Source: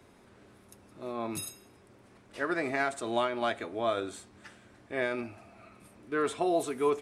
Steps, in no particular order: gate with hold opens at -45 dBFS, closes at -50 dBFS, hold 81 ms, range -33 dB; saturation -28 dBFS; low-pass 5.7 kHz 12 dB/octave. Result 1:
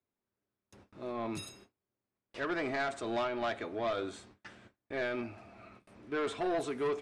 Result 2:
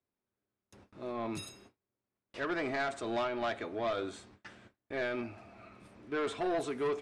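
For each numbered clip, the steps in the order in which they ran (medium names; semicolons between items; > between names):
saturation > low-pass > gate with hold; gate with hold > saturation > low-pass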